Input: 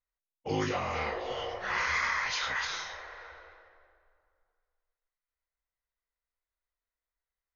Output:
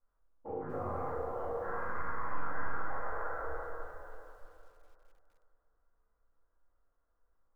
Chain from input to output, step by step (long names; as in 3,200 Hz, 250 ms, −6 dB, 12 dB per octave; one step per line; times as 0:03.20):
stylus tracing distortion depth 0.079 ms
Chebyshev low-pass filter 1,400 Hz, order 4
hum removal 50.72 Hz, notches 28
downward compressor 16 to 1, threshold −49 dBFS, peak gain reduction 22.5 dB
brickwall limiter −45.5 dBFS, peak gain reduction 7 dB
delay that swaps between a low-pass and a high-pass 207 ms, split 810 Hz, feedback 60%, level −7 dB
rectangular room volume 200 cubic metres, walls mixed, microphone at 2.3 metres
feedback echo at a low word length 245 ms, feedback 35%, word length 11 bits, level −14.5 dB
level +7 dB